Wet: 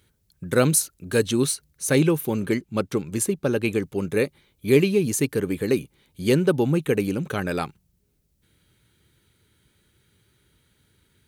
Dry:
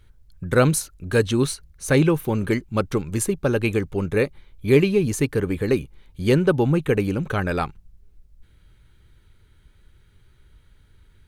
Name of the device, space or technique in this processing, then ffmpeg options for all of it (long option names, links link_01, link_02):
smiley-face EQ: -filter_complex "[0:a]highpass=170,asettb=1/sr,asplit=3[link_01][link_02][link_03];[link_01]atrim=end=2.404[link_04];[link_02]atrim=start=2.4:end=3.82,asetpts=PTS-STARTPTS,afade=type=in:duration=0.004:curve=qsin,afade=type=out:start_time=1.416:duration=0.004:curve=qsin,highshelf=frequency=5400:gain=-5.5[link_05];[link_03]atrim=start=3.816[link_06];[link_04][link_05]acrossfade=duration=0.004:curve1=hsin:curve2=qsin[link_07];[link_07][link_06]acrossfade=duration=0.004:curve1=qsin:curve2=hsin,lowshelf=frequency=100:gain=5,equalizer=frequency=1100:width_type=o:width=2:gain=-4.5,highshelf=frequency=6400:gain=7.5"